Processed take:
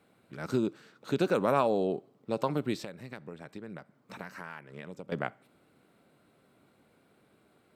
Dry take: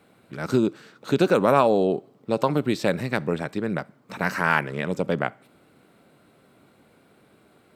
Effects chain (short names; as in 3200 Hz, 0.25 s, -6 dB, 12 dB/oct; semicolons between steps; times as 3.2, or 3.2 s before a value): 2.81–5.12 compressor 10:1, threshold -31 dBFS, peak gain reduction 17 dB; gain -8 dB